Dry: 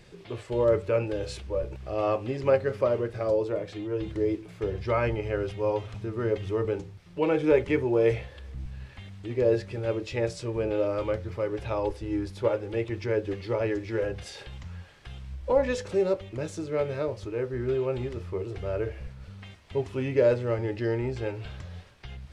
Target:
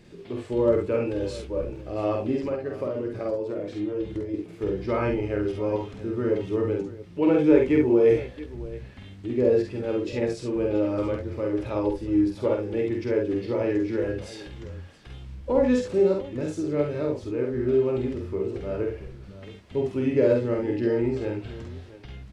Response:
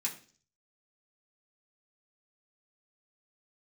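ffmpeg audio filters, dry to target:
-filter_complex "[0:a]equalizer=f=260:w=1.3:g=11.5,asettb=1/sr,asplit=3[a][b][c];[a]atrim=end=2.404[d];[b]atrim=start=2.4:end=4.34,asetpts=PTS-STARTPTS,afade=t=in:d=0.004:c=qsin,afade=t=out:st=1.936:d=0.004:c=qsin,acompressor=threshold=-24dB:ratio=6[e];[c]atrim=start=4.336[f];[d][e]acrossfade=d=0.004:c1=hsin:c2=qsin[g];[g][f]acrossfade=d=0.004:c1=qsin:c2=hsin,asplit=2[h][i];[i]aecho=0:1:48|68|677:0.708|0.422|0.15[j];[h][j]amix=inputs=2:normalize=0,volume=-3.5dB"

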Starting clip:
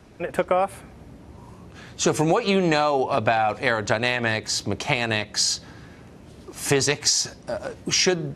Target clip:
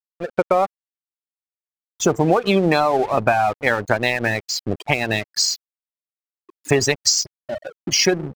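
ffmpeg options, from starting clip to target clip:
-af "afftfilt=real='re*gte(hypot(re,im),0.0891)':imag='im*gte(hypot(re,im),0.0891)':win_size=1024:overlap=0.75,aeval=exprs='sgn(val(0))*max(abs(val(0))-0.0141,0)':c=same,volume=4.5dB"

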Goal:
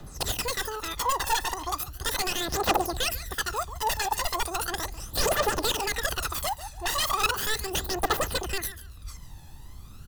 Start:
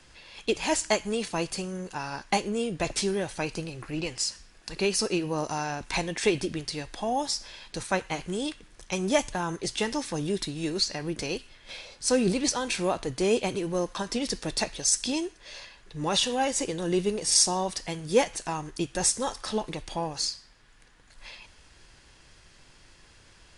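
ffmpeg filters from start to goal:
-filter_complex "[0:a]lowshelf=f=120:g=5.5,acrossover=split=200|1200[a][b][c];[a]acompressor=threshold=-43dB:ratio=6[d];[d][b][c]amix=inputs=3:normalize=0,aeval=exprs='(mod(13.3*val(0)+1,2)-1)/13.3':c=same,asuperstop=centerf=960:order=4:qfactor=6.6,asplit=2[e][f];[f]adynamicsmooth=sensitivity=3:basefreq=1.5k,volume=-2dB[g];[e][g]amix=inputs=2:normalize=0,aecho=1:1:333|666|999:0.188|0.0452|0.0108,asetrate=103194,aresample=44100,aphaser=in_gain=1:out_gain=1:delay=1.2:decay=0.65:speed=0.37:type=triangular,volume=-2.5dB"

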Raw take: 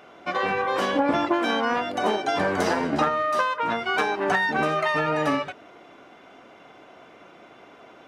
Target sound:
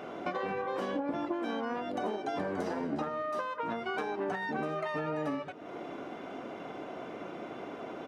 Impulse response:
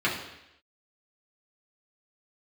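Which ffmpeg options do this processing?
-filter_complex "[0:a]equalizer=f=270:w=0.33:g=10,acompressor=threshold=-34dB:ratio=5,asplit=2[a][b];[b]aecho=0:1:434:0.0631[c];[a][c]amix=inputs=2:normalize=0"

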